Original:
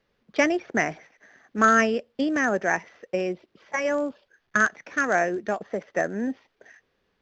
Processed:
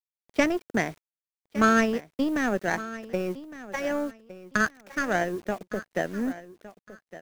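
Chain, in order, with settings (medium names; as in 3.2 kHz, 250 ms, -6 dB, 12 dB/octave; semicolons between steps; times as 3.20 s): power-law waveshaper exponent 1.4; in parallel at -2.5 dB: compression 4:1, threshold -38 dBFS, peak gain reduction 18.5 dB; on the sum: bass shelf 270 Hz +11.5 dB; bit crusher 8-bit; feedback delay 1161 ms, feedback 23%, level -16 dB; trim -2.5 dB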